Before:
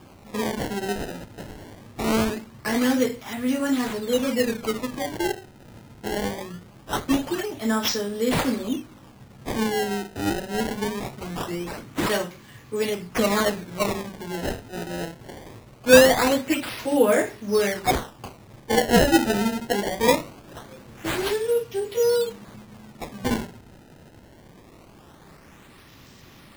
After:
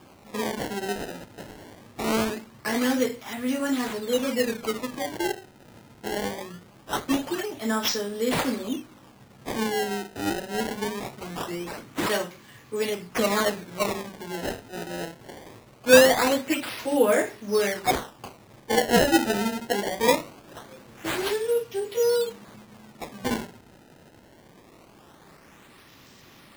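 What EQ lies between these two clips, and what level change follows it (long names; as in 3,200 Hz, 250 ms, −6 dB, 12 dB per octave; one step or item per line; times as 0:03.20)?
low-shelf EQ 140 Hz −9.5 dB
−1.0 dB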